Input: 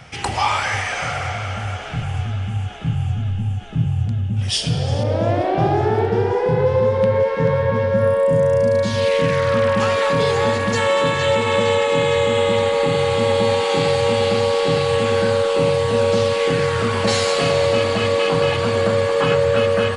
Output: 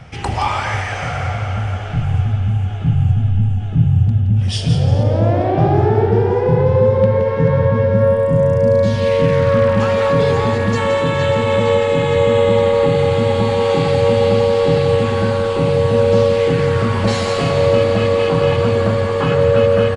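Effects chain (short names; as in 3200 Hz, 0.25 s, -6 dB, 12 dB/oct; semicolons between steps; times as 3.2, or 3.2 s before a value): tilt -2 dB/oct; on a send: echo 0.171 s -8.5 dB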